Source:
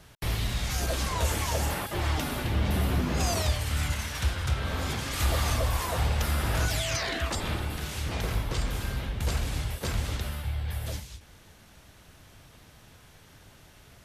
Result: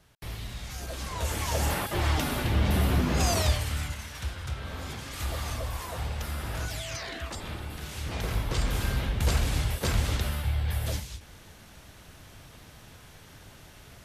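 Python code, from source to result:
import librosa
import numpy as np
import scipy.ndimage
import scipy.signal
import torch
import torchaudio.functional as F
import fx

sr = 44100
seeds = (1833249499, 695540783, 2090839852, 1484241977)

y = fx.gain(x, sr, db=fx.line((0.86, -8.5), (1.7, 2.0), (3.53, 2.0), (3.96, -6.5), (7.54, -6.5), (8.83, 3.5)))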